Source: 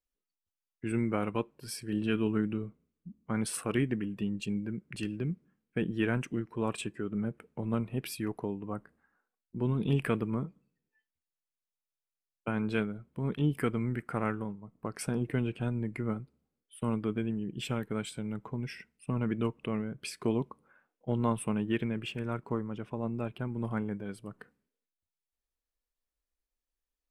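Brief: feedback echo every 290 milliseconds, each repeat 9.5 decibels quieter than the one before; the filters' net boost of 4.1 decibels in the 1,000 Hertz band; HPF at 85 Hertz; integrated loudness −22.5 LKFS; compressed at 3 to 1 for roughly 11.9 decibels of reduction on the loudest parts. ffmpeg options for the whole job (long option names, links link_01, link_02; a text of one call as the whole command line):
ffmpeg -i in.wav -af "highpass=85,equalizer=frequency=1000:width_type=o:gain=5,acompressor=threshold=-40dB:ratio=3,aecho=1:1:290|580|870|1160:0.335|0.111|0.0365|0.012,volume=20dB" out.wav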